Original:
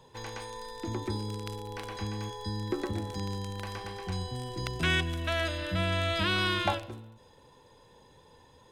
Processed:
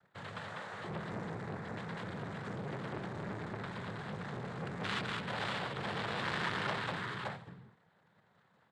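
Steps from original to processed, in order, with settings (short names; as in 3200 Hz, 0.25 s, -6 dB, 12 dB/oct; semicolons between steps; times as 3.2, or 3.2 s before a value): EQ curve 130 Hz 0 dB, 320 Hz -10 dB, 1200 Hz 0 dB, 2400 Hz -2 dB, 3600 Hz -21 dB; sample leveller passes 2; noise vocoder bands 6; tapped delay 0.196/0.573 s -3.5/-4.5 dB; core saturation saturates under 1700 Hz; gain -7.5 dB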